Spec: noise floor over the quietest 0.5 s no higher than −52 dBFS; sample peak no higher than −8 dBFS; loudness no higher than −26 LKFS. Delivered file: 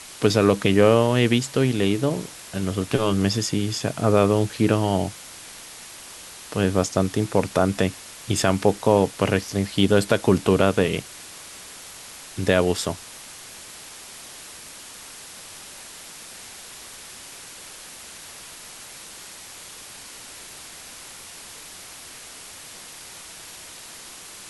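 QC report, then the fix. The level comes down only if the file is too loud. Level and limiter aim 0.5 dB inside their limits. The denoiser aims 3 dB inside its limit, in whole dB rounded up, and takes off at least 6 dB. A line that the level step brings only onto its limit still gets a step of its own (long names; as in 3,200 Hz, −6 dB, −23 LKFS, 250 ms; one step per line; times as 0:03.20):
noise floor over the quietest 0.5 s −41 dBFS: out of spec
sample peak −3.5 dBFS: out of spec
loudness −21.5 LKFS: out of spec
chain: broadband denoise 9 dB, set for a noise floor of −41 dBFS
level −5 dB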